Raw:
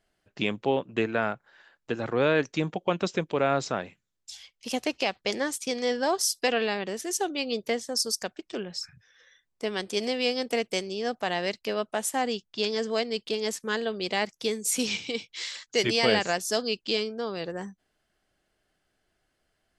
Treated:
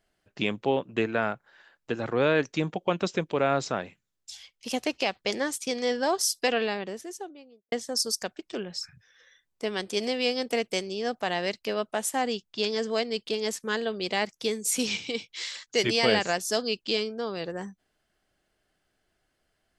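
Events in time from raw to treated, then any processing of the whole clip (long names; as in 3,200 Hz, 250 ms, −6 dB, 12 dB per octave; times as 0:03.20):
0:06.49–0:07.72: fade out and dull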